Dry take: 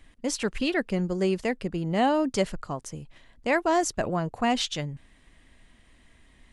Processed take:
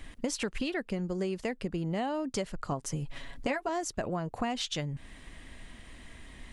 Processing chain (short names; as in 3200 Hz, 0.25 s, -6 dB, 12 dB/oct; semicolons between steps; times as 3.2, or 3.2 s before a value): 2.71–3.69 comb 7.2 ms, depth 82%; compressor 12:1, threshold -38 dBFS, peak gain reduction 21.5 dB; gain +8.5 dB